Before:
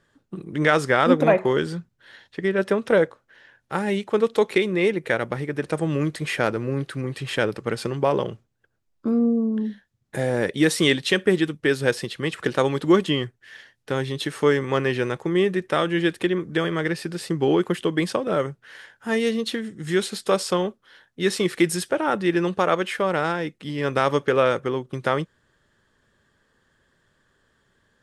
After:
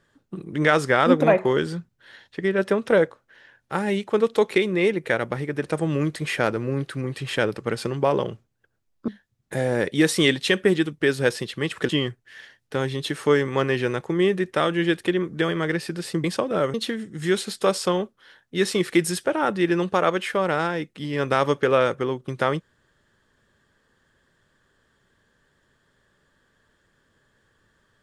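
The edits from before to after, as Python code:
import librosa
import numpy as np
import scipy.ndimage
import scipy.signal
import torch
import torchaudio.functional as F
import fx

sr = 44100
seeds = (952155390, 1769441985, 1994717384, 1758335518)

y = fx.edit(x, sr, fx.cut(start_s=9.08, length_s=0.62),
    fx.cut(start_s=12.51, length_s=0.54),
    fx.cut(start_s=17.4, length_s=0.6),
    fx.cut(start_s=18.5, length_s=0.89), tone=tone)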